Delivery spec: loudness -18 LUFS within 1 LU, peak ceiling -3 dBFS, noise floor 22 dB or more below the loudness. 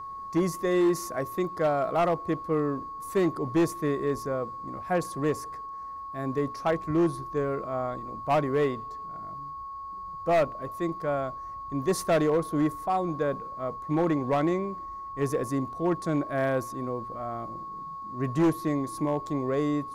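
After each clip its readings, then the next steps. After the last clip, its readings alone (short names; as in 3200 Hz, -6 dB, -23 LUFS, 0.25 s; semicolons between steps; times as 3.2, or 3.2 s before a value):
clipped 1.1%; flat tops at -18.5 dBFS; steady tone 1100 Hz; tone level -36 dBFS; loudness -29.0 LUFS; peak -18.5 dBFS; loudness target -18.0 LUFS
-> clip repair -18.5 dBFS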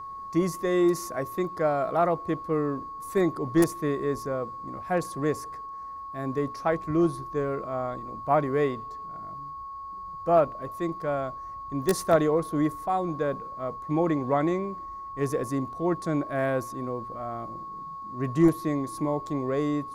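clipped 0.0%; steady tone 1100 Hz; tone level -36 dBFS
-> notch 1100 Hz, Q 30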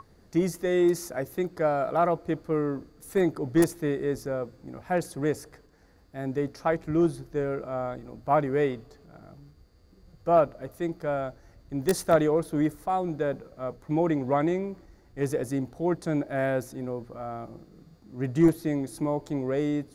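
steady tone none; loudness -28.0 LUFS; peak -9.5 dBFS; loudness target -18.0 LUFS
-> gain +10 dB; limiter -3 dBFS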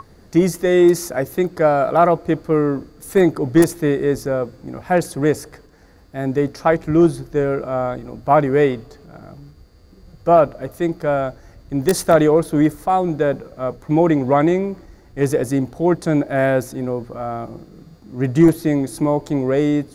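loudness -18.5 LUFS; peak -3.0 dBFS; noise floor -47 dBFS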